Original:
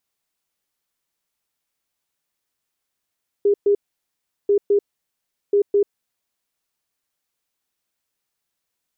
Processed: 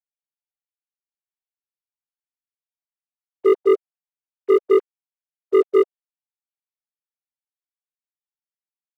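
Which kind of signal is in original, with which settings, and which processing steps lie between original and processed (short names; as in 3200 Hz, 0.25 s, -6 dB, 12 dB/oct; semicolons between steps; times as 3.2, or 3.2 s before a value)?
beep pattern sine 406 Hz, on 0.09 s, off 0.12 s, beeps 2, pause 0.74 s, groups 3, -12.5 dBFS
sine-wave speech; sample leveller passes 2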